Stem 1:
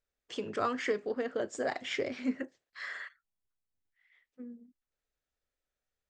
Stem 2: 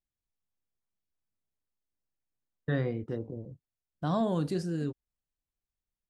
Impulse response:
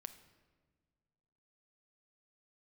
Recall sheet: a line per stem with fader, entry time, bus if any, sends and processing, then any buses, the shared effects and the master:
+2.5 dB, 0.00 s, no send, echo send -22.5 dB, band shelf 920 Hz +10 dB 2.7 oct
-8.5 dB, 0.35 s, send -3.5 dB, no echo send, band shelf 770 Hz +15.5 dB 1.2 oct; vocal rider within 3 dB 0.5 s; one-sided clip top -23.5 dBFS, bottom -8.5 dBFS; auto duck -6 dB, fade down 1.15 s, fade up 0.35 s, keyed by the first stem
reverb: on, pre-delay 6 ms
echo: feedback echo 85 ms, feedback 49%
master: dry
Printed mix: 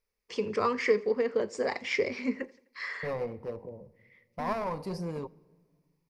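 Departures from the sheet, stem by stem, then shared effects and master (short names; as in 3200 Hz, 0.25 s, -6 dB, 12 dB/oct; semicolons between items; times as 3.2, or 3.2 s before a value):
stem 1: missing band shelf 920 Hz +10 dB 2.7 oct; master: extra ripple EQ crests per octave 0.86, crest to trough 10 dB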